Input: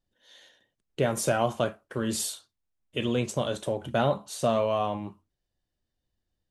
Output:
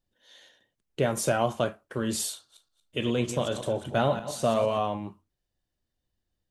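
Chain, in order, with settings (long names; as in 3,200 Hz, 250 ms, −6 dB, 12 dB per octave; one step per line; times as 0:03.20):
0:02.34–0:04.80: feedback delay that plays each chunk backwards 116 ms, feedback 42%, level −10 dB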